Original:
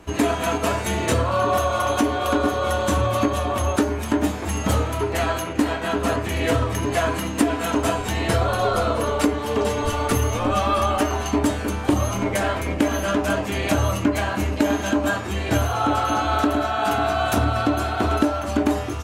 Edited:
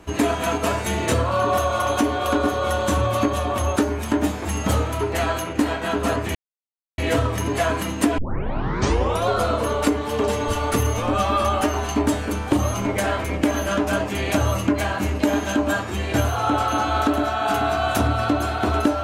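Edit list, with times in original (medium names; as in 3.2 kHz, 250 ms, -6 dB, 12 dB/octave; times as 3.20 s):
6.35 s: insert silence 0.63 s
7.55 s: tape start 1.11 s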